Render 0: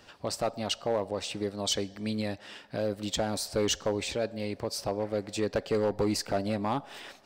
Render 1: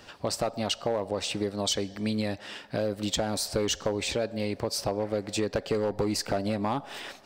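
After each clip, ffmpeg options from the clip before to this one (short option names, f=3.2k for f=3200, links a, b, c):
-af "acompressor=threshold=-29dB:ratio=6,volume=5dB"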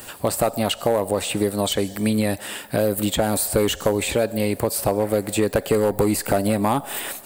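-filter_complex "[0:a]acrossover=split=3400[a][b];[b]acompressor=threshold=-47dB:ratio=4:attack=1:release=60[c];[a][c]amix=inputs=2:normalize=0,aexciter=amount=12.4:drive=5.9:freq=8k,volume=8.5dB"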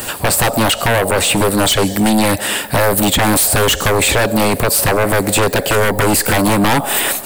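-af "aeval=exprs='0.473*sin(PI/2*4.47*val(0)/0.473)':c=same,volume=-2.5dB"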